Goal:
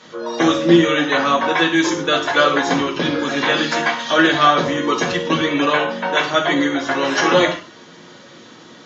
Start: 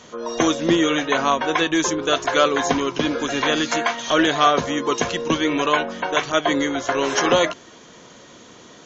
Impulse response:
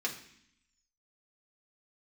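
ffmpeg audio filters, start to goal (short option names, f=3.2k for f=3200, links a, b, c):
-filter_complex "[1:a]atrim=start_sample=2205,afade=t=out:st=0.16:d=0.01,atrim=end_sample=7497,asetrate=32634,aresample=44100[a];[0:a][a]afir=irnorm=-1:irlink=0,volume=-2.5dB"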